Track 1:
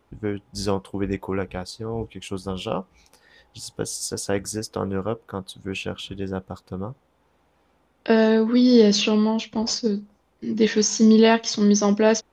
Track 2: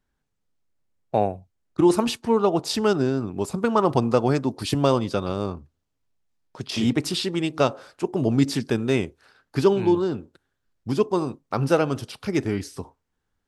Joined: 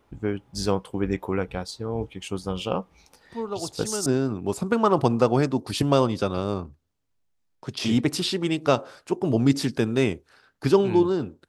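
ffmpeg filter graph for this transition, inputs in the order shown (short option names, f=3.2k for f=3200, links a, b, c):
-filter_complex "[1:a]asplit=2[a][b];[0:a]apad=whole_dur=11.48,atrim=end=11.48,atrim=end=4.062[c];[b]atrim=start=2.978:end=10.4[d];[a]atrim=start=2.17:end=2.98,asetpts=PTS-STARTPTS,volume=-11dB,afade=t=in:d=0.004:c=hsin,afade=t=out:st=0.806:d=0.004:c=hsin,adelay=143325S[e];[c][d]acrossfade=d=0.004:c1=hsin:c2=hsin[f];[f][e]amix=inputs=2:normalize=0"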